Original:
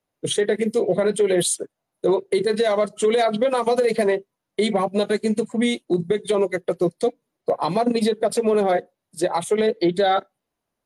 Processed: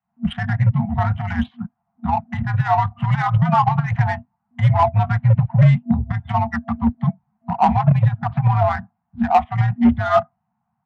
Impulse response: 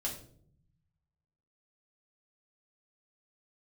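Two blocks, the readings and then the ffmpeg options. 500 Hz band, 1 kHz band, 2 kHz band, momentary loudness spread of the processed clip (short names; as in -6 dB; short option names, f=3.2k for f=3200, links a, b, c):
-8.5 dB, +7.0 dB, +2.0 dB, 10 LU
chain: -filter_complex "[0:a]afftfilt=real='re*(1-between(b*sr/4096,340,770))':imag='im*(1-between(b*sr/4096,340,770))':win_size=4096:overlap=0.75,acrossover=split=200|1100[a][b][c];[b]dynaudnorm=f=100:g=3:m=16.5dB[d];[a][d][c]amix=inputs=3:normalize=0,aeval=exprs='0.473*(cos(1*acos(clip(val(0)/0.473,-1,1)))-cos(1*PI/2))+0.00668*(cos(5*acos(clip(val(0)/0.473,-1,1)))-cos(5*PI/2))':c=same,highpass=f=200:t=q:w=0.5412,highpass=f=200:t=q:w=1.307,lowpass=f=3.1k:t=q:w=0.5176,lowpass=f=3.1k:t=q:w=0.7071,lowpass=f=3.1k:t=q:w=1.932,afreqshift=-100,adynamicsmooth=sensitivity=1:basefreq=2.1k"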